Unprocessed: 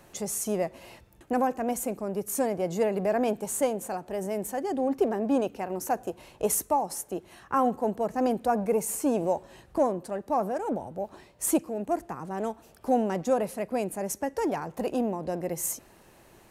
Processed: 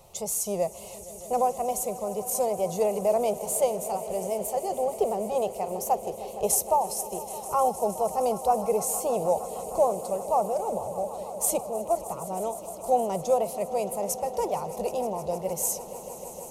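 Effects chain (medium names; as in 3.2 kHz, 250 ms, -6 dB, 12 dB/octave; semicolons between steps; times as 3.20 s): wow and flutter 63 cents; static phaser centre 680 Hz, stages 4; echo with a slow build-up 155 ms, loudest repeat 5, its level -18 dB; trim +3.5 dB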